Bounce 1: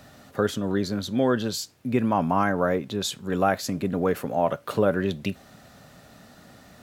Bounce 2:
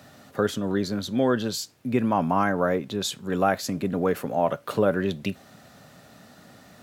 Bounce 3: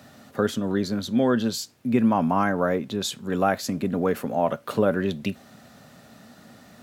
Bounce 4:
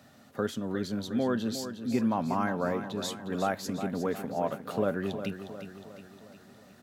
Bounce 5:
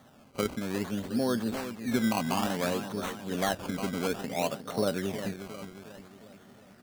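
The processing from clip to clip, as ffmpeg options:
ffmpeg -i in.wav -af "highpass=88" out.wav
ffmpeg -i in.wav -af "equalizer=frequency=230:width=7.3:gain=7" out.wav
ffmpeg -i in.wav -af "aecho=1:1:359|718|1077|1436|1795|2154:0.316|0.164|0.0855|0.0445|0.0231|0.012,volume=-7.5dB" out.wav
ffmpeg -i in.wav -af "acrusher=samples=17:mix=1:aa=0.000001:lfo=1:lforange=17:lforate=0.58" out.wav

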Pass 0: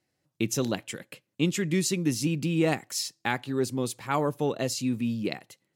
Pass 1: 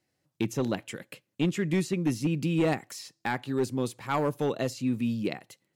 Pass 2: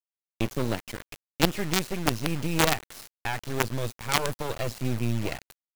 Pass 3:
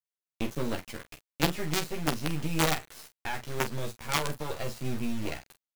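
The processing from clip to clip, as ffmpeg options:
ffmpeg -i in.wav -filter_complex "[0:a]acrossover=split=2500[link_01][link_02];[link_01]volume=19.5dB,asoftclip=hard,volume=-19.5dB[link_03];[link_02]acompressor=threshold=-42dB:ratio=6[link_04];[link_03][link_04]amix=inputs=2:normalize=0" out.wav
ffmpeg -i in.wav -filter_complex "[0:a]asubboost=boost=11.5:cutoff=71,acrossover=split=4500[link_01][link_02];[link_02]acompressor=threshold=-48dB:ratio=4:attack=1:release=60[link_03];[link_01][link_03]amix=inputs=2:normalize=0,acrusher=bits=4:dc=4:mix=0:aa=0.000001,volume=5dB" out.wav
ffmpeg -i in.wav -af "aecho=1:1:13|46:0.708|0.316,volume=-5.5dB" out.wav

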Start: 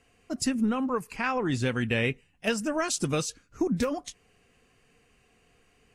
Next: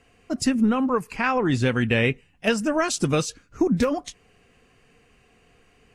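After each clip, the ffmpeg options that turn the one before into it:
ffmpeg -i in.wav -af "highshelf=frequency=5500:gain=-6.5,volume=6dB" out.wav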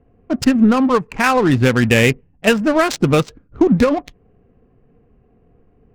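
ffmpeg -i in.wav -af "adynamicsmooth=sensitivity=4:basefreq=510,volume=8dB" out.wav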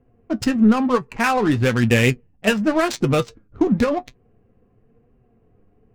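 ffmpeg -i in.wav -af "flanger=delay=7.8:depth=2.2:regen=51:speed=0.97:shape=triangular" out.wav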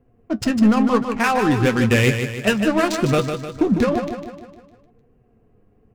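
ffmpeg -i in.wav -filter_complex "[0:a]asoftclip=type=hard:threshold=-9.5dB,asplit=2[link_01][link_02];[link_02]aecho=0:1:152|304|456|608|760|912:0.422|0.215|0.11|0.0559|0.0285|0.0145[link_03];[link_01][link_03]amix=inputs=2:normalize=0" out.wav

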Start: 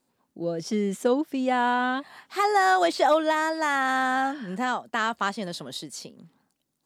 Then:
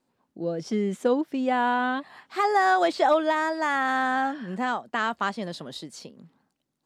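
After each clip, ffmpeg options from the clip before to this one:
ffmpeg -i in.wav -af "lowpass=frequency=3800:poles=1" out.wav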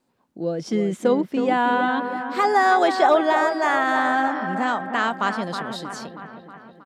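ffmpeg -i in.wav -filter_complex "[0:a]acrossover=split=2700[link_01][link_02];[link_01]aecho=1:1:318|636|954|1272|1590|1908|2226|2544:0.398|0.239|0.143|0.086|0.0516|0.031|0.0186|0.0111[link_03];[link_02]volume=30dB,asoftclip=hard,volume=-30dB[link_04];[link_03][link_04]amix=inputs=2:normalize=0,volume=3.5dB" out.wav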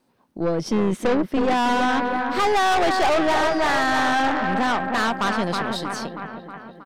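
ffmpeg -i in.wav -af "bandreject=frequency=7200:width=7.2,aeval=exprs='(tanh(15.8*val(0)+0.55)-tanh(0.55))/15.8':channel_layout=same,volume=7dB" out.wav

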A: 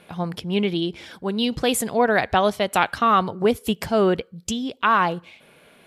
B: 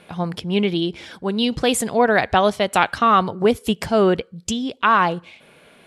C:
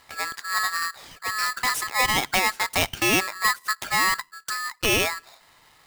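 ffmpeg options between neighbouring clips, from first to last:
ffmpeg -i in.wav -af "lowpass=frequency=11000:width=0.5412,lowpass=frequency=11000:width=1.3066,volume=2.5dB" out.wav
ffmpeg -i in.wav -af "aeval=exprs='val(0)*sgn(sin(2*PI*1500*n/s))':channel_layout=same,volume=-6dB" out.wav

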